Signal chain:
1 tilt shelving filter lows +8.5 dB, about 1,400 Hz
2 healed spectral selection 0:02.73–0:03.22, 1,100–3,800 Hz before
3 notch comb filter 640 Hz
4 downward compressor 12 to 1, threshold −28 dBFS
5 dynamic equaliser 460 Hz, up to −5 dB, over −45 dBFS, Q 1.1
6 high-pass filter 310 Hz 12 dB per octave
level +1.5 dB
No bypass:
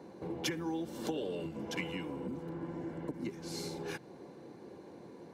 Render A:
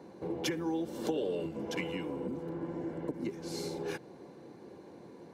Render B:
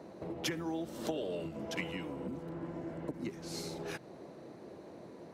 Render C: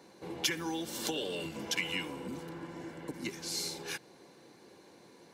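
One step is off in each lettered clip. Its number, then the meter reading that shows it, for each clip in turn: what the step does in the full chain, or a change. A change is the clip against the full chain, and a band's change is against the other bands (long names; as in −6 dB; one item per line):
5, change in crest factor −2.5 dB
3, change in crest factor −1.5 dB
1, change in crest factor +4.0 dB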